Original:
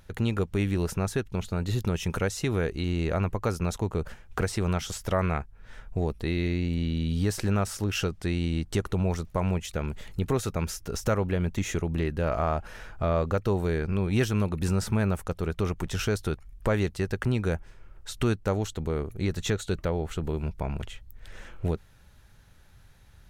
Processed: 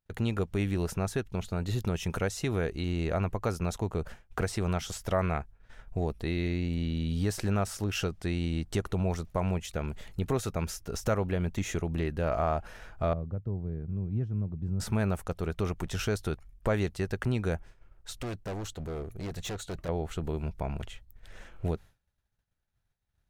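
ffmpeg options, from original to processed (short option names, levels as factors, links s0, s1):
-filter_complex "[0:a]asettb=1/sr,asplit=3[s0][s1][s2];[s0]atrim=end=13.134[s3];[s1]atrim=start=13.13:end=14.8,asetpts=PTS-STARTPTS,afade=t=in:d=0.004:c=qsin,afade=t=out:st=1.666:d=0.004:c=qsin,bandpass=f=120:t=q:w=1.3[s4];[s2]atrim=start=14.796[s5];[s3][s4]acrossfade=d=0.004:c1=hsin:c2=qsin[s6];[s6][s5]acrossfade=d=0.004:c1=qsin:c2=hsin,asettb=1/sr,asplit=3[s7][s8][s9];[s7]atrim=end=18.104[s10];[s8]atrim=start=18.1:end=19.89,asetpts=PTS-STARTPTS,afade=t=in:d=0.004:c=qsin,afade=t=out:st=1.786:d=0.004:c=qsin,volume=33.5,asoftclip=hard,volume=0.0299[s11];[s9]atrim=start=19.886[s12];[s10][s11]acrossfade=d=0.004:c1=hsin:c2=qsin[s13];[s13][s12]acrossfade=d=0.004:c1=qsin:c2=hsin,agate=range=0.0224:threshold=0.0112:ratio=3:detection=peak,equalizer=f=690:w=4.5:g=4,volume=0.708"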